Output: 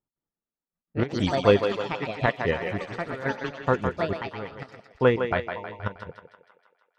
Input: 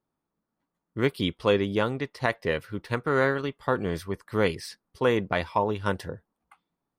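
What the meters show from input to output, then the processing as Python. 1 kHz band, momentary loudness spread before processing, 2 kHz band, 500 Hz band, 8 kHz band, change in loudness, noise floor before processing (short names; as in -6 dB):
+0.5 dB, 10 LU, 0.0 dB, +1.0 dB, n/a, +1.0 dB, -85 dBFS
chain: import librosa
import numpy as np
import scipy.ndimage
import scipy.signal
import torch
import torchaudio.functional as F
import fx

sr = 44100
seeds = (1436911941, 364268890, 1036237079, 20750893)

p1 = scipy.signal.sosfilt(scipy.signal.butter(2, 2900.0, 'lowpass', fs=sr, output='sos'), x)
p2 = fx.notch(p1, sr, hz=1100.0, q=20.0)
p3 = fx.dereverb_blind(p2, sr, rt60_s=1.1)
p4 = fx.low_shelf(p3, sr, hz=100.0, db=11.0)
p5 = fx.step_gate(p4, sr, bpm=189, pattern='x.xx.....x.xx.xx', floor_db=-12.0, edge_ms=4.5)
p6 = p5 + fx.echo_thinned(p5, sr, ms=158, feedback_pct=64, hz=290.0, wet_db=-4, dry=0)
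p7 = fx.echo_pitch(p6, sr, ms=228, semitones=5, count=3, db_per_echo=-6.0)
p8 = fx.upward_expand(p7, sr, threshold_db=-45.0, expansion=1.5)
y = p8 * 10.0 ** (4.5 / 20.0)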